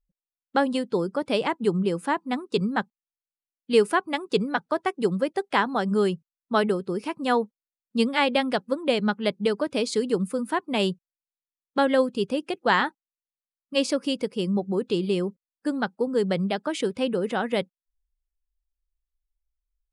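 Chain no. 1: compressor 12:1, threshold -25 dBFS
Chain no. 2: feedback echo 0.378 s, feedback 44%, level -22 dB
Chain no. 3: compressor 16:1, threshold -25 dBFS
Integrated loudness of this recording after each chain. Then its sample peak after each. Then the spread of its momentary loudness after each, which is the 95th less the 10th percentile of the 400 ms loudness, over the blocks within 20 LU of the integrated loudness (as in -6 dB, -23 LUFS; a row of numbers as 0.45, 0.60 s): -31.0, -25.5, -31.0 LUFS; -14.0, -6.0, -14.0 dBFS; 4, 6, 4 LU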